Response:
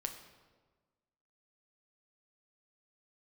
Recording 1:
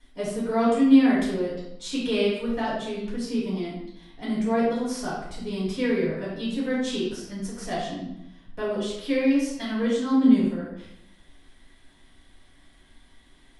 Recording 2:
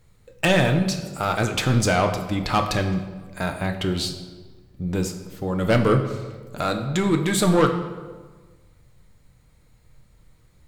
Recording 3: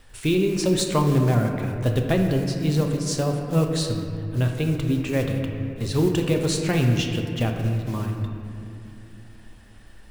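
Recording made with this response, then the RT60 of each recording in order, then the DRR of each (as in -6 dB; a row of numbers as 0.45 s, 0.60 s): 2; 0.80 s, 1.4 s, 2.8 s; -9.0 dB, 4.5 dB, 2.5 dB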